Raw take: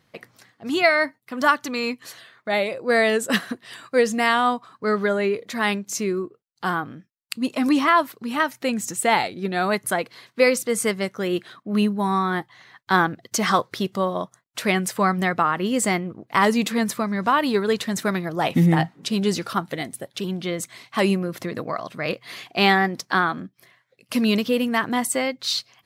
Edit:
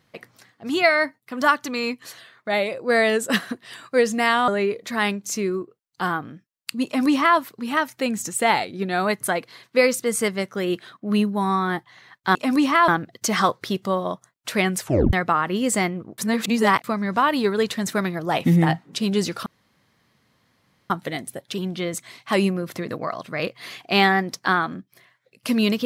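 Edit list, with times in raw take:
0:04.48–0:05.11: remove
0:07.48–0:08.01: duplicate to 0:12.98
0:14.91: tape stop 0.32 s
0:16.28–0:16.94: reverse
0:19.56: splice in room tone 1.44 s

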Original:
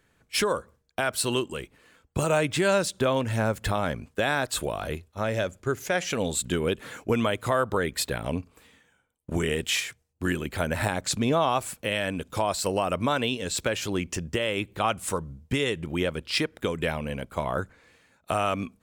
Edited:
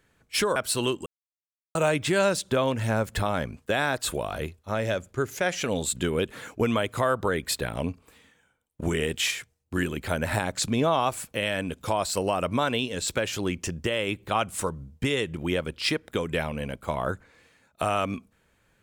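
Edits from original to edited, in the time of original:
0:00.56–0:01.05: remove
0:01.55–0:02.24: silence

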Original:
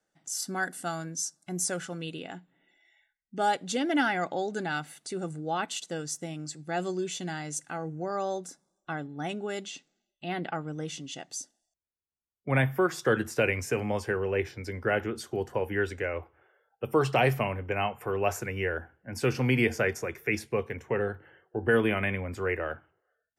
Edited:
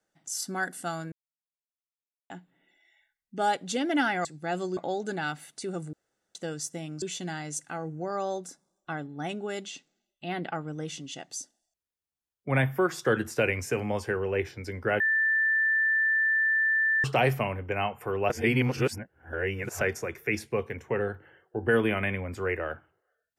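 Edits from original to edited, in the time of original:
0:01.12–0:02.30: silence
0:05.41–0:05.83: fill with room tone
0:06.50–0:07.02: move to 0:04.25
0:15.00–0:17.04: beep over 1,770 Hz −21.5 dBFS
0:18.30–0:19.81: reverse

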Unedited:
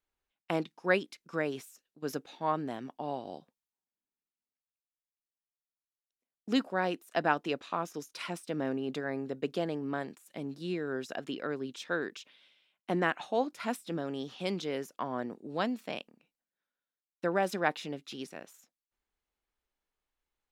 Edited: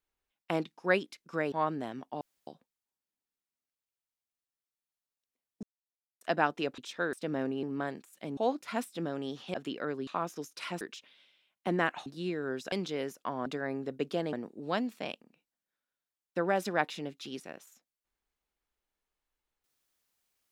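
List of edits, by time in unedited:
0:01.52–0:02.39: remove
0:03.08–0:03.34: fill with room tone
0:06.50–0:07.08: silence
0:07.65–0:08.39: swap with 0:11.69–0:12.04
0:08.89–0:09.76: move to 0:15.20
0:10.50–0:11.16: swap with 0:13.29–0:14.46

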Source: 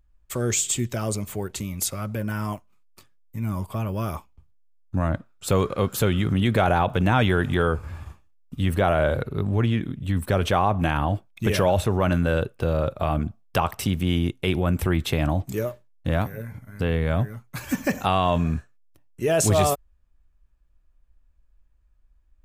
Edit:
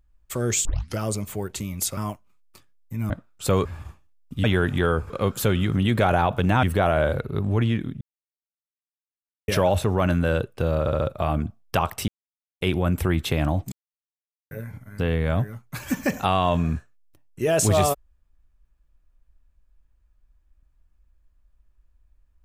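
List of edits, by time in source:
0:00.65: tape start 0.33 s
0:01.97–0:02.40: remove
0:03.53–0:05.12: remove
0:05.67–0:07.20: swap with 0:07.86–0:08.65
0:10.03–0:11.50: silence
0:12.82: stutter 0.07 s, 4 plays
0:13.89–0:14.42: silence
0:15.53–0:16.32: silence

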